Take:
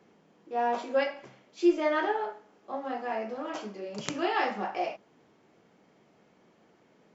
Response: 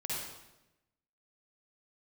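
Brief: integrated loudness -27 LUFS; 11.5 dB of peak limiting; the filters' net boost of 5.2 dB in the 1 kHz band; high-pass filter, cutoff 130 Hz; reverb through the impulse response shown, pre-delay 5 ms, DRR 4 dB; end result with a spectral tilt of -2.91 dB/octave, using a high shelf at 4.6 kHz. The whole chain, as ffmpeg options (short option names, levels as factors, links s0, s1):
-filter_complex "[0:a]highpass=130,equalizer=f=1000:t=o:g=7.5,highshelf=f=4600:g=-9,alimiter=limit=0.075:level=0:latency=1,asplit=2[s0][s1];[1:a]atrim=start_sample=2205,adelay=5[s2];[s1][s2]afir=irnorm=-1:irlink=0,volume=0.447[s3];[s0][s3]amix=inputs=2:normalize=0,volume=1.78"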